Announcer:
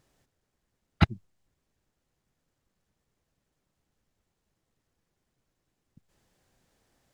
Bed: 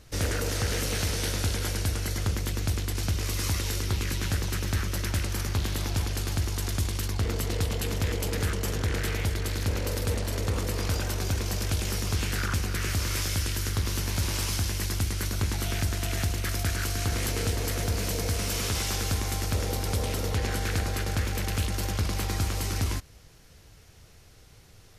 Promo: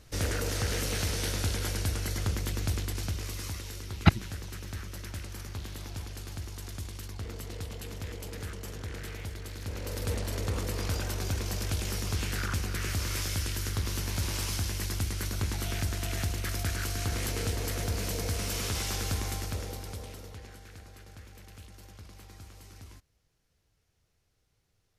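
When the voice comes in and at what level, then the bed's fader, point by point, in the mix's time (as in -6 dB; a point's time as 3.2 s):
3.05 s, +1.5 dB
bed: 2.79 s -2.5 dB
3.68 s -11 dB
9.58 s -11 dB
10.11 s -3.5 dB
19.26 s -3.5 dB
20.64 s -21 dB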